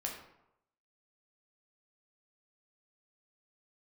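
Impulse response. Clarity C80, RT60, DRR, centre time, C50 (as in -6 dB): 7.5 dB, 0.85 s, -1.0 dB, 35 ms, 5.0 dB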